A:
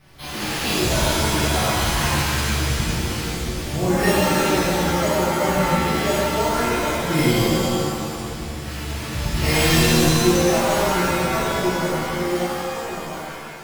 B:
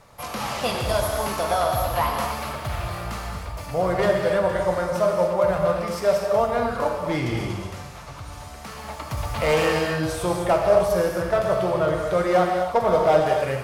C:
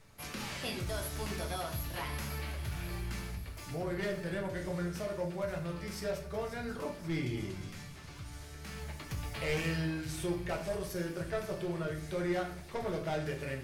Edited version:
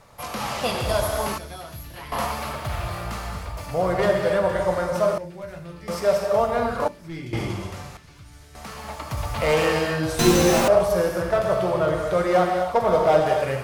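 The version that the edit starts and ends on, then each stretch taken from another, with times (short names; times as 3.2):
B
1.38–2.12 from C
5.18–5.88 from C
6.88–7.33 from C
7.97–8.55 from C
10.19–10.68 from A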